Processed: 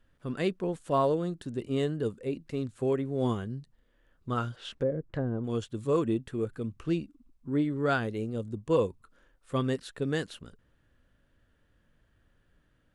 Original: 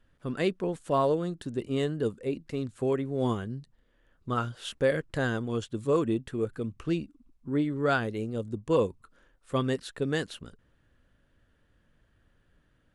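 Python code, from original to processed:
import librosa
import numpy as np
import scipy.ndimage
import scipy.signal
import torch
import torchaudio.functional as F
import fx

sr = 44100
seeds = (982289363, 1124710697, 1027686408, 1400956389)

y = fx.env_lowpass_down(x, sr, base_hz=460.0, full_db=-24.0, at=(4.55, 5.43), fade=0.02)
y = fx.hpss(y, sr, part='percussive', gain_db=-3)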